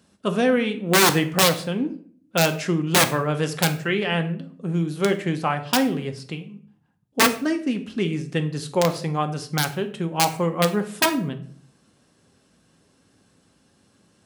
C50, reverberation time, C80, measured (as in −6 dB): 13.0 dB, 0.50 s, 17.0 dB